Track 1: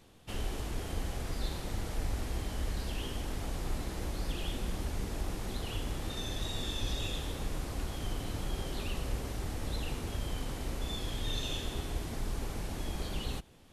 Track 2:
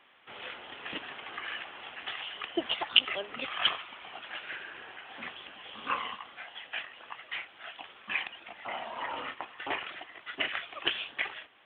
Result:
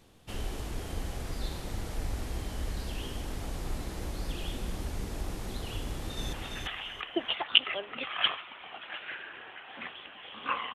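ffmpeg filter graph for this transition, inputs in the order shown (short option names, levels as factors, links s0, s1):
-filter_complex "[0:a]apad=whole_dur=10.74,atrim=end=10.74,atrim=end=6.332[s0];[1:a]atrim=start=1.738:end=6.15[s1];[s0][s1]acrossfade=d=0.004:c1=hsin:c2=hsin,asplit=2[s2][s3];[s3]afade=t=in:st=5.84:d=0.01,afade=t=out:st=6.33:d=0.01,aecho=0:1:340|680|1020:0.707946|0.141589|0.0283178[s4];[s2][s4]amix=inputs=2:normalize=0"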